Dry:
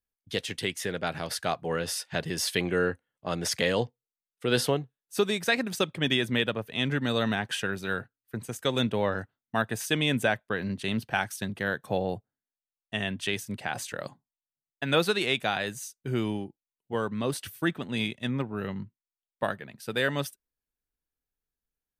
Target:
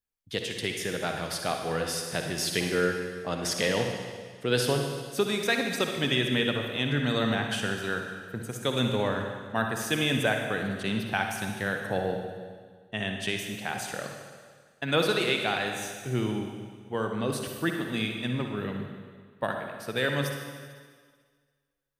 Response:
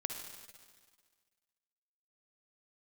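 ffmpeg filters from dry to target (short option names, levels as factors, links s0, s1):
-filter_complex "[0:a]asettb=1/sr,asplit=3[s0][s1][s2];[s0]atrim=end=12.104[s3];[s1]atrim=start=12.1:end=12.97,asetpts=PTS-STARTPTS,afade=t=in:d=0.004:c=qsin,afade=t=out:st=0.866:d=0.004:c=qsin,highshelf=f=5200:g=-10[s4];[s2]atrim=start=12.966[s5];[s3][s4]acrossfade=d=0.004:c1=hsin:c2=qsin[s6];[s6][s5]acrossfade=d=0.004:c1=qsin:c2=hsin[s7];[1:a]atrim=start_sample=2205[s8];[s7][s8]afir=irnorm=-1:irlink=0"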